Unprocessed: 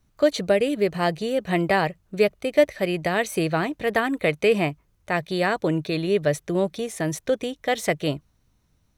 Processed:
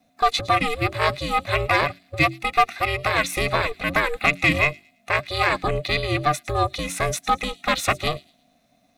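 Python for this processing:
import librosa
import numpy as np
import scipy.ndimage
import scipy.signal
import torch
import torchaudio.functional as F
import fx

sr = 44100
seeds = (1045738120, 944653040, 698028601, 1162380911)

p1 = fx.band_invert(x, sr, width_hz=500)
p2 = fx.low_shelf(p1, sr, hz=370.0, db=-6.0)
p3 = fx.rider(p2, sr, range_db=10, speed_s=0.5)
p4 = p2 + F.gain(torch.from_numpy(p3), 0.0).numpy()
p5 = fx.hum_notches(p4, sr, base_hz=50, count=3)
p6 = fx.small_body(p5, sr, hz=(2300.0, 3800.0), ring_ms=25, db=15)
p7 = 10.0 ** (-4.5 / 20.0) * np.tanh(p6 / 10.0 ** (-4.5 / 20.0))
p8 = p7 + fx.echo_wet_highpass(p7, sr, ms=110, feedback_pct=33, hz=4000.0, wet_db=-17.5, dry=0)
y = p8 * np.sin(2.0 * np.pi * 230.0 * np.arange(len(p8)) / sr)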